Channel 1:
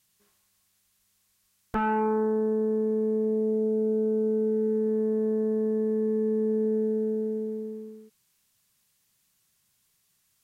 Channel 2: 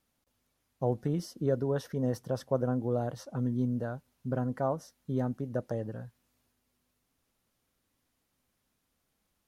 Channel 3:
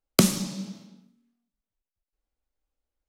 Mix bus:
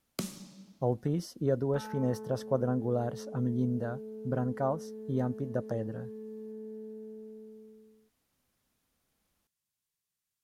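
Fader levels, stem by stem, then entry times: −17.5, 0.0, −17.5 decibels; 0.00, 0.00, 0.00 seconds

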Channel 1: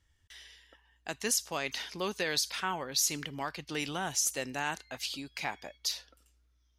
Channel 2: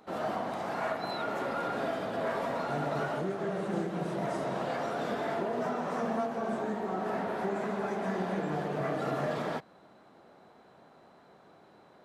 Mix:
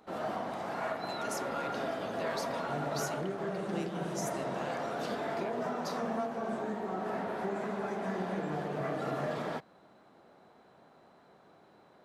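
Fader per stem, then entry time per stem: −13.5, −2.5 decibels; 0.00, 0.00 seconds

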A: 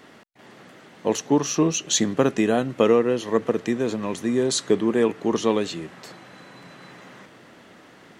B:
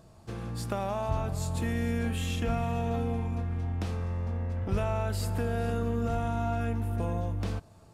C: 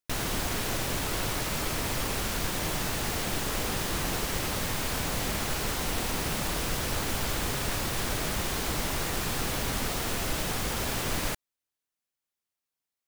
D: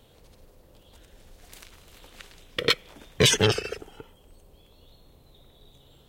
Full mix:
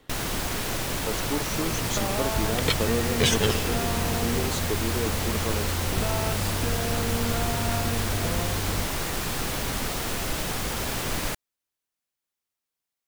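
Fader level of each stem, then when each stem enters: −11.0, +0.5, +1.5, −4.0 decibels; 0.00, 1.25, 0.00, 0.00 seconds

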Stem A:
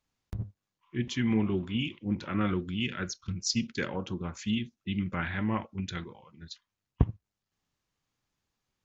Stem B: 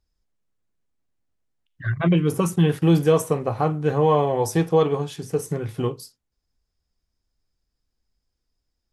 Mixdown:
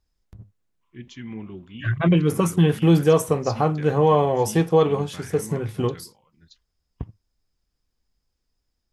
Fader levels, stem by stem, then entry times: −8.5, +1.0 decibels; 0.00, 0.00 seconds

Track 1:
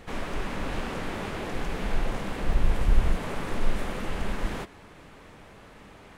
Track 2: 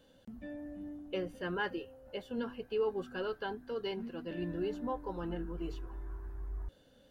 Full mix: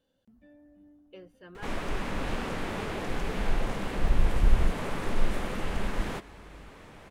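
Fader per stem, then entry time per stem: −0.5, −12.0 decibels; 1.55, 0.00 seconds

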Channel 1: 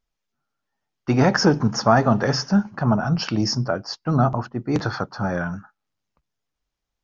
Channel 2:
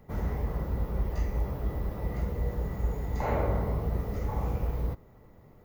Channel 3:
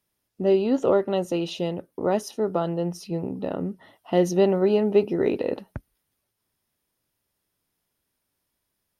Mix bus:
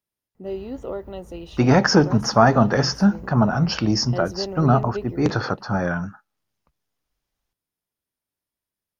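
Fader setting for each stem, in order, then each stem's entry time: +1.5, −14.5, −10.5 decibels; 0.50, 0.35, 0.00 seconds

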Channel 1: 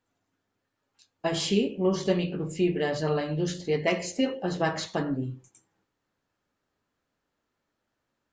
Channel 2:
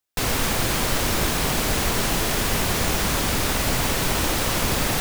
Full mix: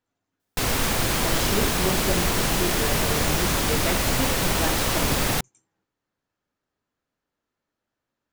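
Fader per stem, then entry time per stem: −3.5, −0.5 decibels; 0.00, 0.40 seconds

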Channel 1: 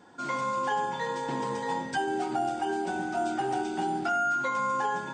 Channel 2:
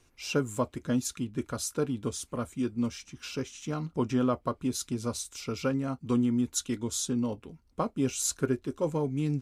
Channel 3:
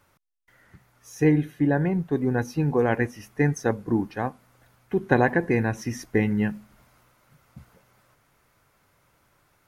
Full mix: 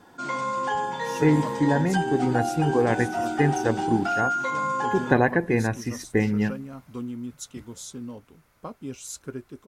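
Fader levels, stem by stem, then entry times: +2.0, −7.5, 0.0 decibels; 0.00, 0.85, 0.00 seconds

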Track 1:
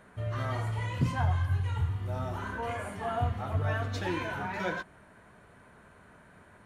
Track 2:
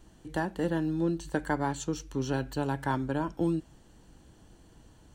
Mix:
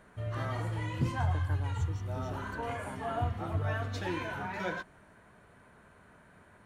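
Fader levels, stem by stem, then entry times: −2.5, −15.5 decibels; 0.00, 0.00 seconds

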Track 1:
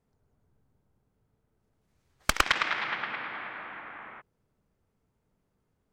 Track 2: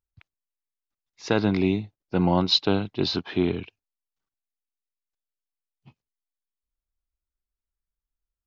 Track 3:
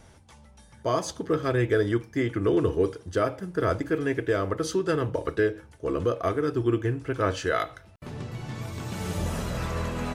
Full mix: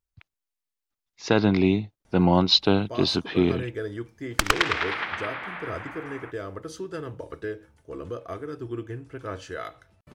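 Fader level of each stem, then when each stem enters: +2.5, +2.0, −9.0 decibels; 2.10, 0.00, 2.05 seconds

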